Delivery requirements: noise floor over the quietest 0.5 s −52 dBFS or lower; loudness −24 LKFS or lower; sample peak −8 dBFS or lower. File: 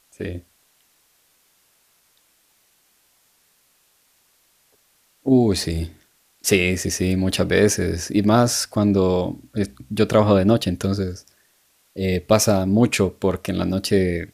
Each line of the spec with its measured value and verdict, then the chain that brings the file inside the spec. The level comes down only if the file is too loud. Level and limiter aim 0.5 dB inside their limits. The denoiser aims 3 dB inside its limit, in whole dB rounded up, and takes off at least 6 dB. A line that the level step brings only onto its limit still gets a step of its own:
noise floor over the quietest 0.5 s −62 dBFS: in spec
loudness −20.0 LKFS: out of spec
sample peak −2.0 dBFS: out of spec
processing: level −4.5 dB
brickwall limiter −8.5 dBFS

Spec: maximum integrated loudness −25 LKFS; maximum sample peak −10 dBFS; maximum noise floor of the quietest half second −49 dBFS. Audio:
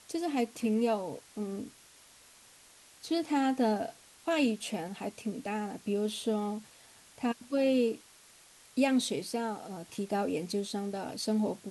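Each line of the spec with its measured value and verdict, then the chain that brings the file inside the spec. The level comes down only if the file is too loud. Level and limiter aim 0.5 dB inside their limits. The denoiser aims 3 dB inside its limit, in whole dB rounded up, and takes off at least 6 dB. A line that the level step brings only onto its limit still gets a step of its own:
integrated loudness −32.5 LKFS: in spec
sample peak −16.5 dBFS: in spec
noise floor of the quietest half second −58 dBFS: in spec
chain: no processing needed

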